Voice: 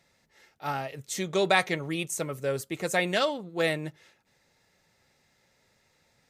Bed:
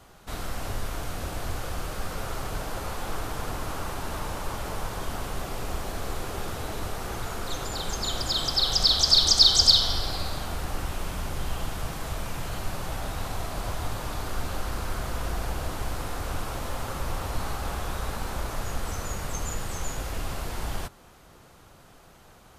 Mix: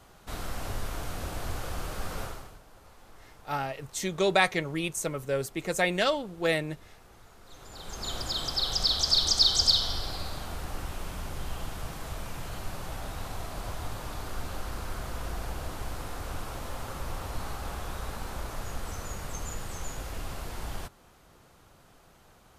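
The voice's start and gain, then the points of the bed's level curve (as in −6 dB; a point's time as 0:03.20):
2.85 s, 0.0 dB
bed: 0:02.23 −2.5 dB
0:02.61 −21.5 dB
0:07.40 −21.5 dB
0:08.10 −5 dB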